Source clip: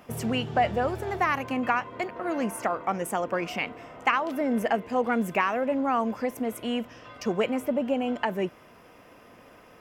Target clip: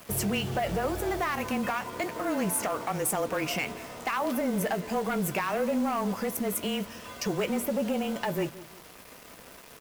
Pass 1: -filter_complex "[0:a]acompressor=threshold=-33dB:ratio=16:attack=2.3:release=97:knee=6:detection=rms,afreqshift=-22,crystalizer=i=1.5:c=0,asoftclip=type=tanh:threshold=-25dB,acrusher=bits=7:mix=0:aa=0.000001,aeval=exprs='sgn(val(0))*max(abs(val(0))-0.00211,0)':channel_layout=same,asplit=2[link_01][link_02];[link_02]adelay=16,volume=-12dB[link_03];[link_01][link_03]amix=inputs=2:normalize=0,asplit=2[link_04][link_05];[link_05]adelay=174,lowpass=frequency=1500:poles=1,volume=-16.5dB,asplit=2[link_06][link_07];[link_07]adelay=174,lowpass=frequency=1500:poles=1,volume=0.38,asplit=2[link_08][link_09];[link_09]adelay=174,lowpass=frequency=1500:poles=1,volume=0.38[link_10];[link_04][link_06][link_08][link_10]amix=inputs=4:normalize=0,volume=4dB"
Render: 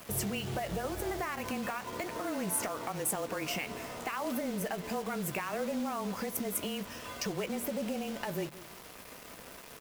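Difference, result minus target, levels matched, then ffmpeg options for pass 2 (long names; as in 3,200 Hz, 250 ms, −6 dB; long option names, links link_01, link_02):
downward compressor: peak gain reduction +8.5 dB
-filter_complex "[0:a]acompressor=threshold=-24dB:ratio=16:attack=2.3:release=97:knee=6:detection=rms,afreqshift=-22,crystalizer=i=1.5:c=0,asoftclip=type=tanh:threshold=-25dB,acrusher=bits=7:mix=0:aa=0.000001,aeval=exprs='sgn(val(0))*max(abs(val(0))-0.00211,0)':channel_layout=same,asplit=2[link_01][link_02];[link_02]adelay=16,volume=-12dB[link_03];[link_01][link_03]amix=inputs=2:normalize=0,asplit=2[link_04][link_05];[link_05]adelay=174,lowpass=frequency=1500:poles=1,volume=-16.5dB,asplit=2[link_06][link_07];[link_07]adelay=174,lowpass=frequency=1500:poles=1,volume=0.38,asplit=2[link_08][link_09];[link_09]adelay=174,lowpass=frequency=1500:poles=1,volume=0.38[link_10];[link_04][link_06][link_08][link_10]amix=inputs=4:normalize=0,volume=4dB"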